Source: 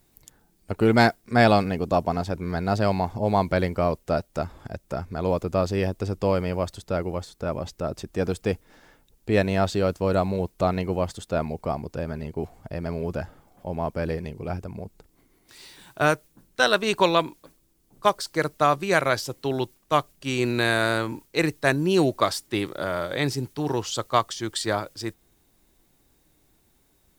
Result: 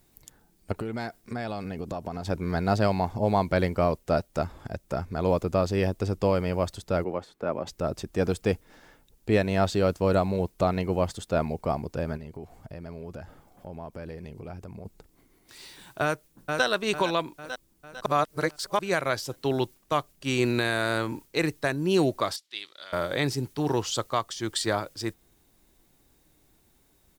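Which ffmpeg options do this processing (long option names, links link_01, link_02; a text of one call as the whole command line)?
ffmpeg -i in.wav -filter_complex "[0:a]asettb=1/sr,asplit=3[link_01][link_02][link_03];[link_01]atrim=end=0.724[link_04];[link_02]atrim=start=0.72:end=2.25,asetpts=PTS-STARTPTS,afade=type=in:duration=0.004:curve=qsin,afade=type=out:start_time=1.526:duration=0.004:curve=qsin,acompressor=threshold=-29dB:ratio=10:attack=3.2:release=140:knee=1:detection=peak[link_05];[link_03]atrim=start=2.246[link_06];[link_04][link_05]acrossfade=duration=0.004:curve1=hsin:curve2=qsin[link_07];[link_07][link_06]acrossfade=duration=0.004:curve1=qsin:curve2=hsin,asettb=1/sr,asplit=3[link_08][link_09][link_10];[link_08]atrim=end=7.044[link_11];[link_09]atrim=start=7.04:end=7.67,asetpts=PTS-STARTPTS,afade=type=in:duration=0.004:curve=qsin,afade=type=out:start_time=0.626:duration=0.004:curve=qsin,acrossover=split=180 2900:gain=0.178 1 0.224[link_12][link_13][link_14];[link_12][link_13][link_14]amix=inputs=3:normalize=0[link_15];[link_10]atrim=start=7.666[link_16];[link_11][link_15]acrossfade=duration=0.004:curve1=hsin:curve2=qsin[link_17];[link_17][link_16]acrossfade=duration=0.004:curve1=qsin:curve2=hsin,asplit=3[link_18][link_19][link_20];[link_18]afade=type=out:start_time=12.16:duration=0.02[link_21];[link_19]acompressor=threshold=-39dB:ratio=3:attack=3.2:release=140:knee=1:detection=peak,afade=type=in:start_time=12.16:duration=0.02,afade=type=out:start_time=14.84:duration=0.02[link_22];[link_20]afade=type=in:start_time=14.84:duration=0.02[link_23];[link_21][link_22][link_23]amix=inputs=3:normalize=0,asplit=2[link_24][link_25];[link_25]afade=type=in:start_time=16.03:duration=0.01,afade=type=out:start_time=16.65:duration=0.01,aecho=0:1:450|900|1350|1800|2250|2700:0.334965|0.167483|0.0837414|0.0418707|0.0209353|0.0104677[link_26];[link_24][link_26]amix=inputs=2:normalize=0,asettb=1/sr,asplit=3[link_27][link_28][link_29];[link_27]atrim=end=22.364[link_30];[link_28]atrim=start=22.36:end=22.93,asetpts=PTS-STARTPTS,afade=type=in:duration=0.004:curve=qsin,afade=type=out:start_time=0.566:duration=0.004:curve=qsin,bandpass=frequency=3800:width_type=q:width=2.1[link_31];[link_29]atrim=start=22.926[link_32];[link_30][link_31]acrossfade=duration=0.004:curve1=hsin:curve2=qsin[link_33];[link_33][link_32]acrossfade=duration=0.004:curve1=qsin:curve2=hsin,asplit=3[link_34][link_35][link_36];[link_34]atrim=end=18.062[link_37];[link_35]atrim=start=18.058:end=18.792,asetpts=PTS-STARTPTS,areverse[link_38];[link_36]atrim=start=18.788[link_39];[link_37][link_38]acrossfade=duration=0.004:curve1=hsin:curve2=hsin[link_40];[link_40][link_39]acrossfade=duration=0.004:curve1=hsin:curve2=hsin,alimiter=limit=-12dB:level=0:latency=1:release=347" out.wav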